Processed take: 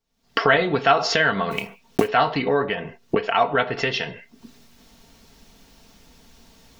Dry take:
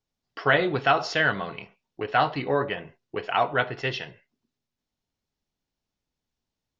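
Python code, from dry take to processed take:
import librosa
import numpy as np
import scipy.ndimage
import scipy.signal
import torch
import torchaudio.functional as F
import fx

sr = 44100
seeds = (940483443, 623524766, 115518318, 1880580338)

y = fx.block_float(x, sr, bits=5, at=(1.5, 2.07), fade=0.02)
y = fx.recorder_agc(y, sr, target_db=-16.5, rise_db_per_s=57.0, max_gain_db=30)
y = y + 0.45 * np.pad(y, (int(4.4 * sr / 1000.0), 0))[:len(y)]
y = y * librosa.db_to_amplitude(2.5)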